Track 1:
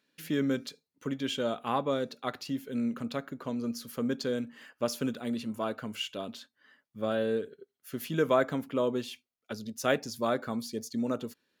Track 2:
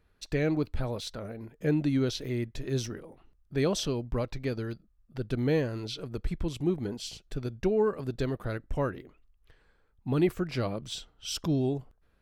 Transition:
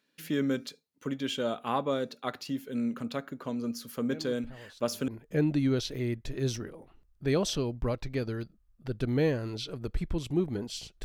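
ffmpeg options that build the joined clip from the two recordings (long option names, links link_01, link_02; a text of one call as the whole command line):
ffmpeg -i cue0.wav -i cue1.wav -filter_complex "[1:a]asplit=2[link_01][link_02];[0:a]apad=whole_dur=11.04,atrim=end=11.04,atrim=end=5.082[link_03];[link_02]atrim=start=1.378:end=7.34[link_04];[link_01]atrim=start=0.4:end=1.38,asetpts=PTS-STARTPTS,volume=-16dB,afade=type=in:duration=0.004:curve=hsin,afade=type=out:start_time=0.976:duration=0.004:curve=hsin,adelay=4100[link_05];[link_03][link_04]acrossfade=duration=0.004:curve1=hsin:curve2=hsin[link_06];[link_06][link_05]amix=inputs=2:normalize=0" out.wav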